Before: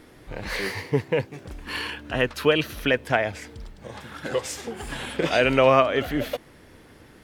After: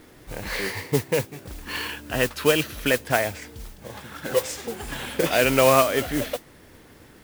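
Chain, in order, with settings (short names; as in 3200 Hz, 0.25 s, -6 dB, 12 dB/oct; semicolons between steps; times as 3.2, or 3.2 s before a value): 4.36–5.24 dynamic EQ 520 Hz, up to +6 dB, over -38 dBFS, Q 3.7; modulation noise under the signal 11 dB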